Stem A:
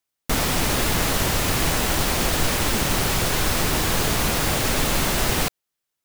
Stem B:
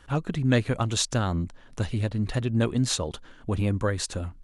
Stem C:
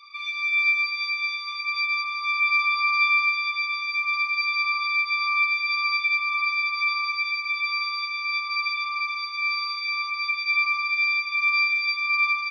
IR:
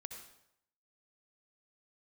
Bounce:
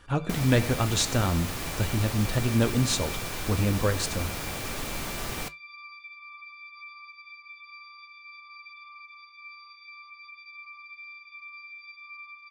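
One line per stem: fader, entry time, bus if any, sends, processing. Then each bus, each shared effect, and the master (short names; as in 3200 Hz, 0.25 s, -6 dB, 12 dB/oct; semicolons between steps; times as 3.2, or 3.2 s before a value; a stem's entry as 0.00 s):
-8.0 dB, 0.00 s, no send, dry
+2.5 dB, 0.00 s, send -6.5 dB, dry
-14.0 dB, 0.00 s, no send, compressor, threshold -23 dBFS, peak gain reduction 6.5 dB; LPF 4200 Hz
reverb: on, RT60 0.75 s, pre-delay 58 ms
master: flange 0.38 Hz, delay 9.1 ms, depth 2.6 ms, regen -72%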